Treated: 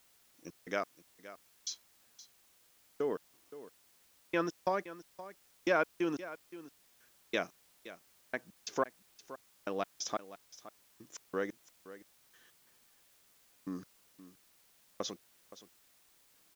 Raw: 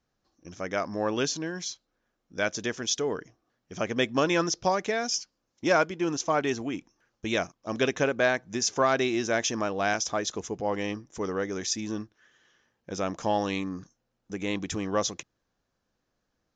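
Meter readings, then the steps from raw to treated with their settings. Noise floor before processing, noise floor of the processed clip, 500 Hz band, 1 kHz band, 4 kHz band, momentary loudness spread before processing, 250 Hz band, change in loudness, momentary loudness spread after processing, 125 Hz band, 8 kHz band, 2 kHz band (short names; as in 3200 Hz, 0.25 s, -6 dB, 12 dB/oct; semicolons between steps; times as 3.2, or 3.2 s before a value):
-80 dBFS, -67 dBFS, -11.0 dB, -11.0 dB, -15.0 dB, 13 LU, -12.0 dB, -9.5 dB, 21 LU, -16.0 dB, -16.0 dB, -11.5 dB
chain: HPF 210 Hz 12 dB/oct; treble ducked by the level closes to 2900 Hz, closed at -21 dBFS; bell 800 Hz -3.5 dB; in parallel at +1 dB: compressor, threshold -35 dBFS, peak gain reduction 14.5 dB; on the sum: step gate "..x.x..." 90 bpm -60 dB; requantised 10-bit, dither triangular; on a send: echo 0.52 s -15.5 dB; on the sum: gain -7 dB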